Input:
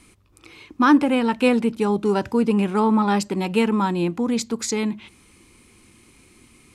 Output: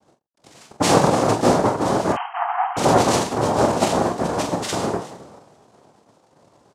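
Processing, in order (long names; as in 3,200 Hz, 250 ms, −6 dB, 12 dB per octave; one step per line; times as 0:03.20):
dynamic equaliser 1,800 Hz, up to −8 dB, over −38 dBFS, Q 0.76
coupled-rooms reverb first 0.83 s, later 2.8 s, DRR 1.5 dB
slack as between gear wheels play −41 dBFS
cochlear-implant simulation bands 2
0:02.12–0:02.77: linear-phase brick-wall band-pass 680–3,200 Hz
on a send: ambience of single reflections 28 ms −9.5 dB, 45 ms −9 dB
on the sum: level −1 dB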